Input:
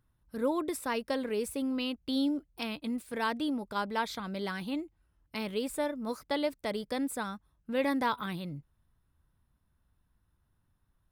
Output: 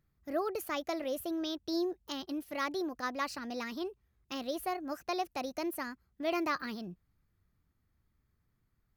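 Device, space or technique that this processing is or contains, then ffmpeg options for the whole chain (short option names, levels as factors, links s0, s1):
nightcore: -af "asetrate=54684,aresample=44100,volume=0.708"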